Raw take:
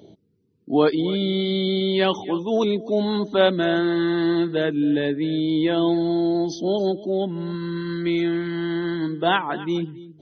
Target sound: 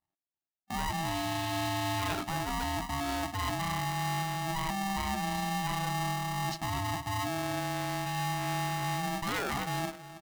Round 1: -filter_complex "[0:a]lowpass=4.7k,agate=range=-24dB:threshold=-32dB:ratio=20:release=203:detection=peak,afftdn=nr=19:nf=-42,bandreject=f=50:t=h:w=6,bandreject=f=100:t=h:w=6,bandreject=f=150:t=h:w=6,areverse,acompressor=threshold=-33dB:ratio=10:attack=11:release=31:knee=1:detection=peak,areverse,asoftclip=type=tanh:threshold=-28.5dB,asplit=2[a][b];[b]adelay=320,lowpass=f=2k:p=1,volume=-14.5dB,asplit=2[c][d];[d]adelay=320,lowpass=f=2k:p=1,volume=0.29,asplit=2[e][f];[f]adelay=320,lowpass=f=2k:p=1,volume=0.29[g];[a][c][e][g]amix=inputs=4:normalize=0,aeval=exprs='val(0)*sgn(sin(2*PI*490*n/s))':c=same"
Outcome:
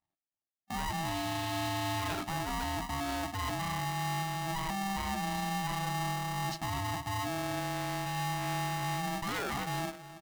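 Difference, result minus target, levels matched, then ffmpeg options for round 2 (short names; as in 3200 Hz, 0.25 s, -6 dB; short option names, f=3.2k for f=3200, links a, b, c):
soft clip: distortion +16 dB
-filter_complex "[0:a]lowpass=4.7k,agate=range=-24dB:threshold=-32dB:ratio=20:release=203:detection=peak,afftdn=nr=19:nf=-42,bandreject=f=50:t=h:w=6,bandreject=f=100:t=h:w=6,bandreject=f=150:t=h:w=6,areverse,acompressor=threshold=-33dB:ratio=10:attack=11:release=31:knee=1:detection=peak,areverse,asoftclip=type=tanh:threshold=-18.5dB,asplit=2[a][b];[b]adelay=320,lowpass=f=2k:p=1,volume=-14.5dB,asplit=2[c][d];[d]adelay=320,lowpass=f=2k:p=1,volume=0.29,asplit=2[e][f];[f]adelay=320,lowpass=f=2k:p=1,volume=0.29[g];[a][c][e][g]amix=inputs=4:normalize=0,aeval=exprs='val(0)*sgn(sin(2*PI*490*n/s))':c=same"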